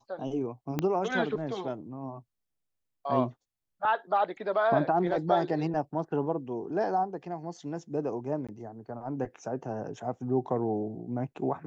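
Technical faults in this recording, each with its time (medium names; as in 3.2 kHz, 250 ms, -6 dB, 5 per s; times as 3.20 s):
0.79 s: pop -15 dBFS
8.47–8.49 s: dropout 16 ms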